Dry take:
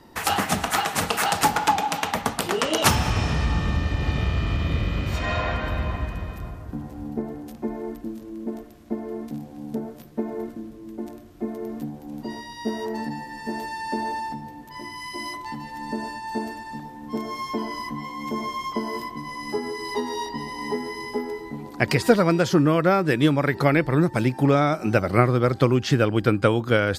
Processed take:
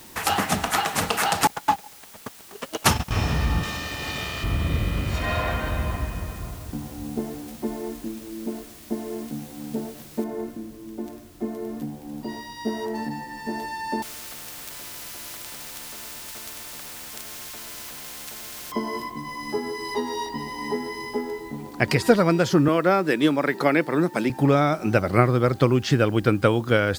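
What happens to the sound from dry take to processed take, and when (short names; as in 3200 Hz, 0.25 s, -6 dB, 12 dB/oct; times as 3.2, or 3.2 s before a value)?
1.47–3.12 gate -21 dBFS, range -32 dB
3.63–4.44 RIAA curve recording
10.24 noise floor step -47 dB -56 dB
14.02–18.72 spectral compressor 10:1
22.68–24.3 HPF 190 Hz 24 dB/oct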